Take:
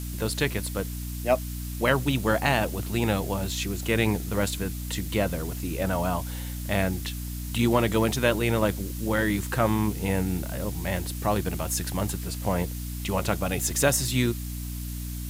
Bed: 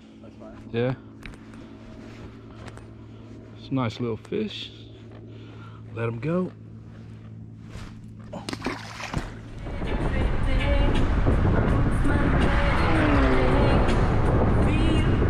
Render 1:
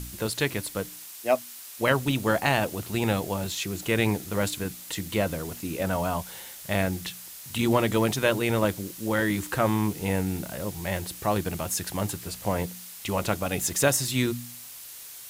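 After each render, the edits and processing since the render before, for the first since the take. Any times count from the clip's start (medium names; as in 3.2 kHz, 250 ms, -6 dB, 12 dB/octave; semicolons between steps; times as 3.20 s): de-hum 60 Hz, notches 5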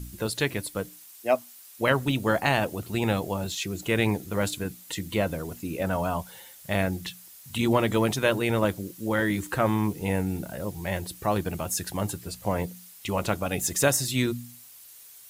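noise reduction 9 dB, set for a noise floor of -43 dBFS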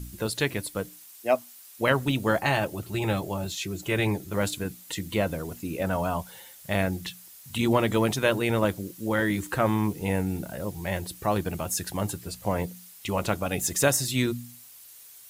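2.39–4.34 s: comb of notches 240 Hz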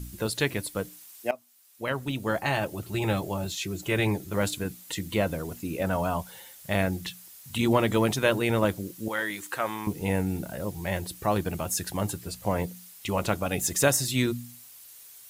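1.31–2.99 s: fade in, from -18 dB; 9.08–9.87 s: high-pass 1 kHz 6 dB/octave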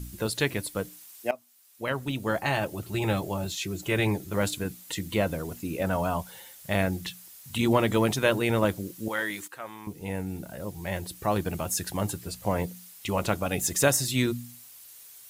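9.48–11.53 s: fade in, from -12 dB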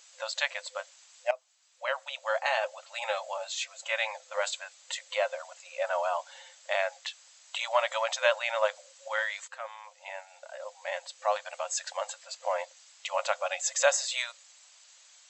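FFT band-pass 510–8000 Hz; band-stop 5.5 kHz, Q 19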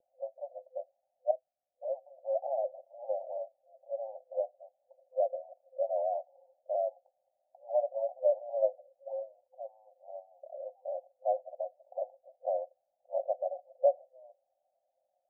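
steep low-pass 750 Hz 96 dB/octave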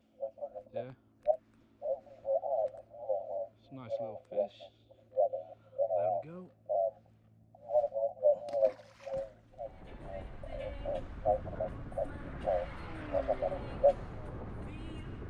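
add bed -22.5 dB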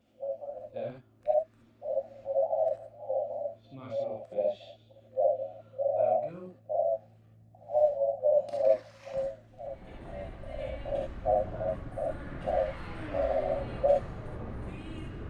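gated-style reverb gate 90 ms rising, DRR -1 dB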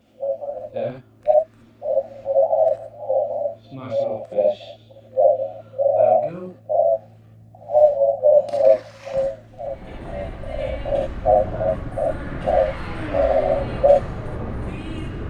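trim +11 dB; peak limiter -3 dBFS, peak gain reduction 1.5 dB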